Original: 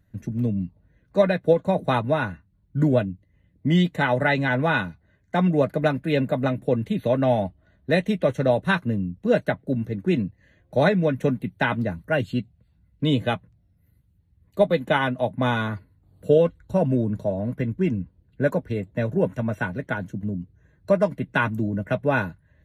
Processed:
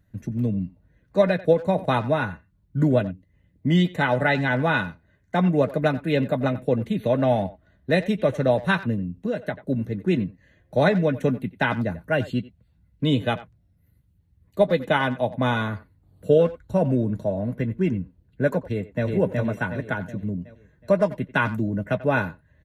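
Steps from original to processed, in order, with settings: 8.94–9.59 s: compression 6:1, threshold -23 dBFS, peak gain reduction 9 dB; 18.63–19.07 s: echo throw 370 ms, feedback 45%, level -2 dB; speakerphone echo 90 ms, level -16 dB

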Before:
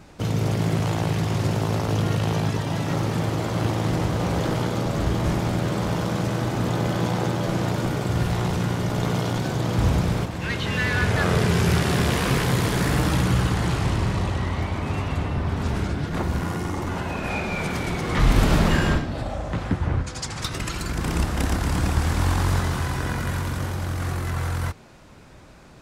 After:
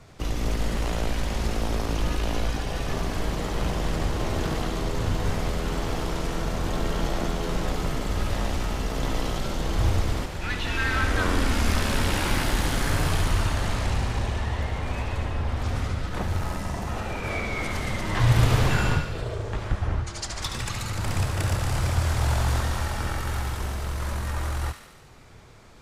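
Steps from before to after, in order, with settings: frequency shift -160 Hz; feedback echo behind a high-pass 72 ms, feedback 65%, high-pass 1.5 kHz, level -7 dB; trim -2 dB

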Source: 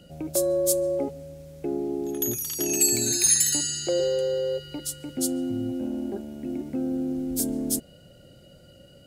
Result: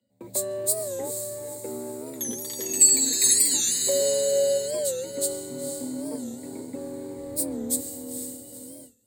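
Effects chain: echo that smears into a reverb 478 ms, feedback 49%, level -6 dB; gate with hold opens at -30 dBFS; high-pass 41 Hz; treble shelf 8.5 kHz +5.5 dB; frequency shift +35 Hz; rippled EQ curve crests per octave 1, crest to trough 13 dB; in parallel at -10 dB: crossover distortion -31.5 dBFS; on the sum: comb of notches 150 Hz; warped record 45 rpm, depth 160 cents; trim -4.5 dB

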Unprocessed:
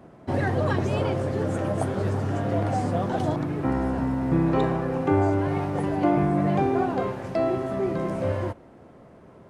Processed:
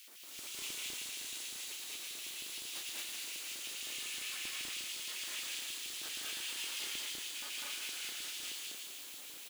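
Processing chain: high-pass 96 Hz 6 dB/octave; pre-emphasis filter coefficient 0.9; spectral gate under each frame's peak -30 dB weak; frequency weighting A; integer overflow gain 52 dB; flange 0.51 Hz, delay 5.9 ms, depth 3.3 ms, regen -14%; word length cut 12-bit, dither triangular; thinning echo 115 ms, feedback 77%, high-pass 930 Hz, level -3.5 dB; LFO high-pass square 6.4 Hz 320–2700 Hz; loudspeakers at several distances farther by 68 m -1 dB, 79 m -2 dB; trim +15 dB

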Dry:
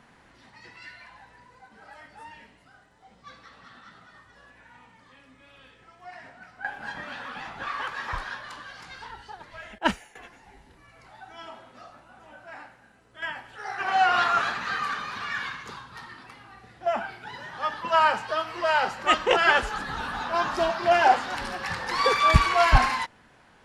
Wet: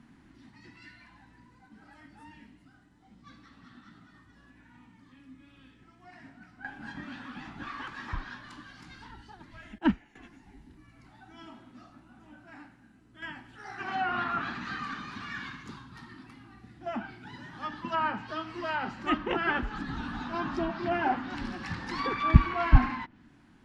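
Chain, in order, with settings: resonant low shelf 380 Hz +8.5 dB, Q 3; low-pass that closes with the level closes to 2.4 kHz, closed at -19 dBFS; trim -7.5 dB

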